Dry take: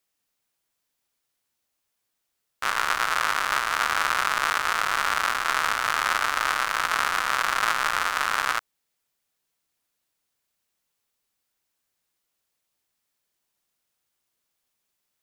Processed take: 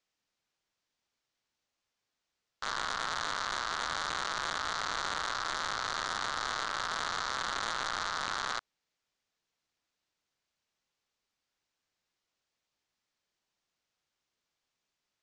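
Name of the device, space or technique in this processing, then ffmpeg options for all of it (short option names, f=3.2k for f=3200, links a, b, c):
synthesiser wavefolder: -af "aeval=exprs='0.0841*(abs(mod(val(0)/0.0841+3,4)-2)-1)':c=same,lowpass=f=6.5k:w=0.5412,lowpass=f=6.5k:w=1.3066,volume=-2.5dB"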